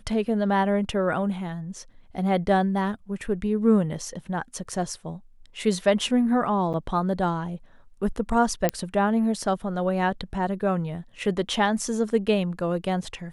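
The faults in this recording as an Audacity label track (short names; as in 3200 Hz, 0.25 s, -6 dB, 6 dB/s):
6.730000	6.740000	gap 8.1 ms
8.690000	8.690000	pop -7 dBFS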